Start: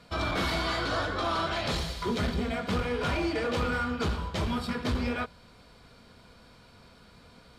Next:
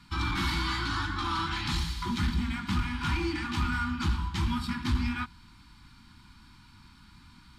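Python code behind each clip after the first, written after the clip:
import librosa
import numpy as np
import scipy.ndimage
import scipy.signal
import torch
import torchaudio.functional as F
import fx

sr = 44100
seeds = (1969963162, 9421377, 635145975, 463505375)

y = scipy.signal.sosfilt(scipy.signal.ellip(3, 1.0, 40, [330.0, 860.0], 'bandstop', fs=sr, output='sos'), x)
y = fx.low_shelf(y, sr, hz=92.0, db=5.5)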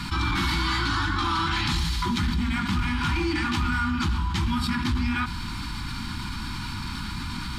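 y = fx.env_flatten(x, sr, amount_pct=70)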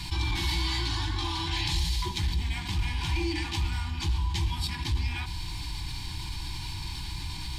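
y = fx.fixed_phaser(x, sr, hz=550.0, stages=4)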